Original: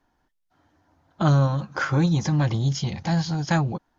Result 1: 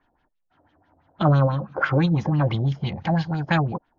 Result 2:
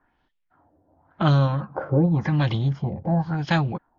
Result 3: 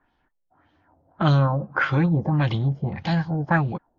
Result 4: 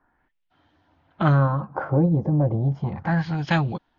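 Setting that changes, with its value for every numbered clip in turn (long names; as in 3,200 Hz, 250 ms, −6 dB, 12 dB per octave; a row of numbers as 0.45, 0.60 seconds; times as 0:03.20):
auto-filter low-pass, speed: 6, 0.91, 1.7, 0.33 Hertz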